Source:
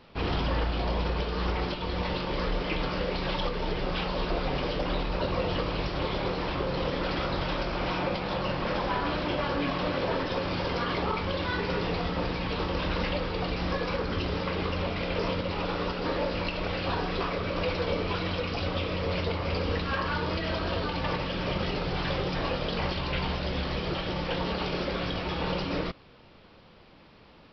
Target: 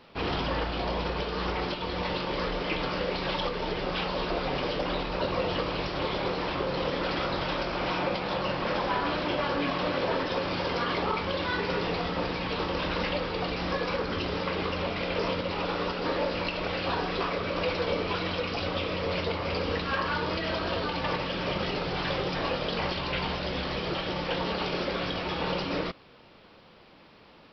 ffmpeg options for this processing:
-af "lowshelf=f=130:g=-9.5,volume=1.5dB"

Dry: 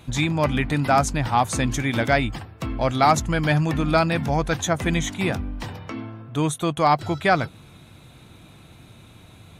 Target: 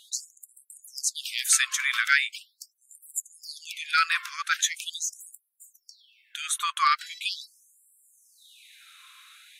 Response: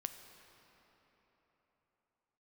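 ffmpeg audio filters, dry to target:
-filter_complex "[0:a]asettb=1/sr,asplit=3[a][b][c];[a]atrim=end=1.174[d];[b]atrim=start=1.17:end=1.67,asetpts=PTS-STARTPTS,afade=t=in:d=0.004:c=qsin,afade=t=out:st=0.496:d=0.004:c=qsin,aemphasis=mode=production:type=cd[e];[c]atrim=start=1.666[f];[d][e]acrossfade=d=0.004:c1=hsin:c2=qsin[g];[g][f]acrossfade=d=0.004:c1=qsin:c2=hsin,afftfilt=real='re*gte(b*sr/1024,990*pow(7400/990,0.5+0.5*sin(2*PI*0.41*pts/sr)))':imag='im*gte(b*sr/1024,990*pow(7400/990,0.5+0.5*sin(2*PI*0.41*pts/sr)))':win_size=1024:overlap=0.75,volume=3.5dB"

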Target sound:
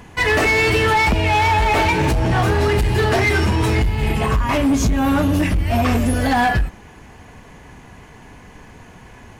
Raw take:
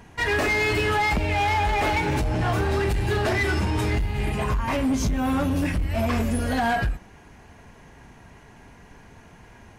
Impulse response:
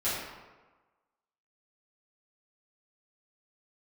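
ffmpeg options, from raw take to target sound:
-af "asetrate=45938,aresample=44100,volume=6.5dB"

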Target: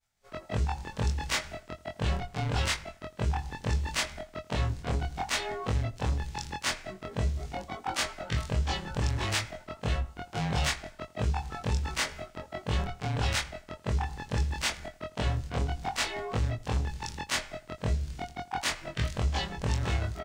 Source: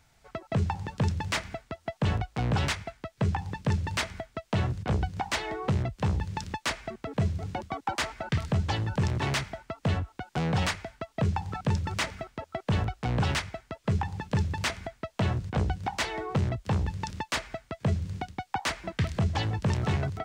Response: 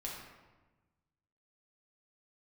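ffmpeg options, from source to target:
-filter_complex "[0:a]afftfilt=real='re':imag='-im':win_size=2048:overlap=0.75,highshelf=f=2.9k:g=7,afreqshift=-19,agate=range=-33dB:threshold=-55dB:ratio=3:detection=peak,asplit=2[a][b];[b]adelay=83,lowpass=f=2k:p=1,volume=-19dB,asplit=2[c][d];[d]adelay=83,lowpass=f=2k:p=1,volume=0.41,asplit=2[e][f];[f]adelay=83,lowpass=f=2k:p=1,volume=0.41[g];[c][e][g]amix=inputs=3:normalize=0[h];[a][h]amix=inputs=2:normalize=0,volume=1.5dB"

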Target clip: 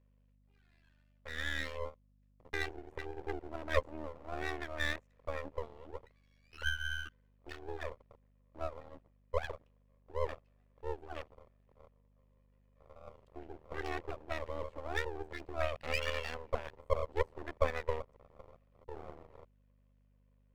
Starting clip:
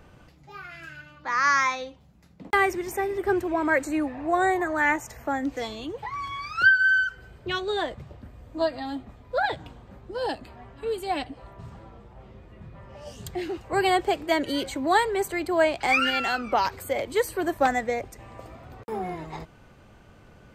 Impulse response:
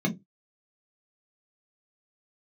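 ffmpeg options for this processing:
-filter_complex "[0:a]asplit=3[a][b][c];[a]bandpass=f=530:t=q:w=8,volume=0dB[d];[b]bandpass=f=1.84k:t=q:w=8,volume=-6dB[e];[c]bandpass=f=2.48k:t=q:w=8,volume=-9dB[f];[d][e][f]amix=inputs=3:normalize=0,bandreject=f=128.1:t=h:w=4,bandreject=f=256.2:t=h:w=4,bandreject=f=384.3:t=h:w=4,tremolo=f=78:d=0.889,afwtdn=0.00355,aeval=exprs='max(val(0),0)':c=same,aeval=exprs='val(0)+0.000224*(sin(2*PI*50*n/s)+sin(2*PI*2*50*n/s)/2+sin(2*PI*3*50*n/s)/3+sin(2*PI*4*50*n/s)/4+sin(2*PI*5*50*n/s)/5)':c=same,volume=5.5dB"

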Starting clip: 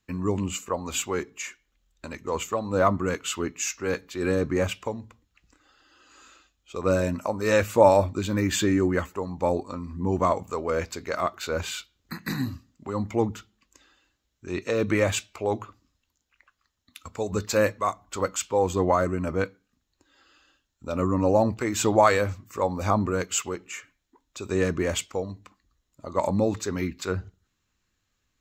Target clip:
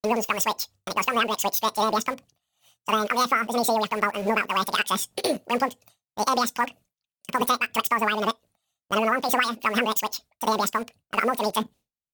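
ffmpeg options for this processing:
-filter_complex "[0:a]asetrate=103194,aresample=44100,asplit=2[a][b];[b]acrusher=bits=5:mix=0:aa=0.000001,volume=-9.5dB[c];[a][c]amix=inputs=2:normalize=0,agate=range=-33dB:threshold=-45dB:ratio=3:detection=peak,acompressor=threshold=-24dB:ratio=10,volume=5dB"

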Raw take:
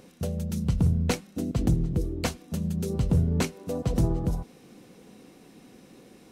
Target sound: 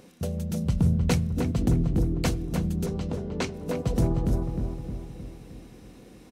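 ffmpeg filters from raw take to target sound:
-filter_complex "[0:a]asettb=1/sr,asplit=3[a][b][c];[a]atrim=end=2.864[d];[b]atrim=start=2.86:end=3.54,asetpts=PTS-STARTPTS,afade=t=in:d=0.004:c=qsin,afade=t=out:st=0.676:d=0.004:c=qsin,acrossover=split=260 7200:gain=0.178 1 0.141[e][f][g];[e][f][g]amix=inputs=3:normalize=0[h];[c]atrim=start=3.536[i];[d][h]acrossfade=d=0.004:c1=hsin:c2=qsin[j];[j][i]acrossfade=d=0.004:c1=qsin:c2=hsin,asplit=2[k][l];[l]adelay=309,lowpass=f=1.5k:p=1,volume=-4dB,asplit=2[m][n];[n]adelay=309,lowpass=f=1.5k:p=1,volume=0.54,asplit=2[o][p];[p]adelay=309,lowpass=f=1.5k:p=1,volume=0.54,asplit=2[q][r];[r]adelay=309,lowpass=f=1.5k:p=1,volume=0.54,asplit=2[s][t];[t]adelay=309,lowpass=f=1.5k:p=1,volume=0.54,asplit=2[u][v];[v]adelay=309,lowpass=f=1.5k:p=1,volume=0.54,asplit=2[w][x];[x]adelay=309,lowpass=f=1.5k:p=1,volume=0.54[y];[k][m][o][q][s][u][w][y]amix=inputs=8:normalize=0"

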